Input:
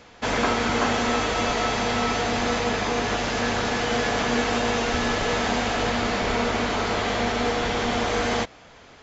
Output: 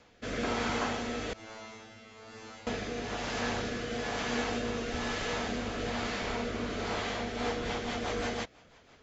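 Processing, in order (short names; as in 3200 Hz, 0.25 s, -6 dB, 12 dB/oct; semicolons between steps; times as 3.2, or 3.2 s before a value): 1.33–2.67 resonator 110 Hz, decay 0.7 s, harmonics all, mix 100%; rotary speaker horn 1.1 Hz, later 6 Hz, at 7.01; gain -7.5 dB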